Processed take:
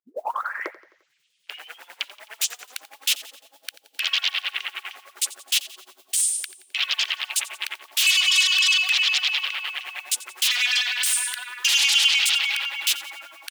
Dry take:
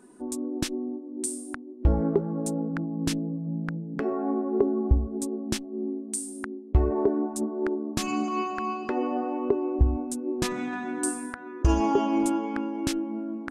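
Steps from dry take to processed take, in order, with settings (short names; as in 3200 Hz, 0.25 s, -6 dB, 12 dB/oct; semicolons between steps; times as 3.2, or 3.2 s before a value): tape start at the beginning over 2.94 s; LFO high-pass sine 9.8 Hz 540–3000 Hz; in parallel at -5 dB: sine folder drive 20 dB, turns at -14 dBFS; on the sum: modulation noise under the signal 30 dB; high-pass sweep 280 Hz -> 3000 Hz, 0.46–1.29; on a send: feedback echo 87 ms, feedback 51%, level -17.5 dB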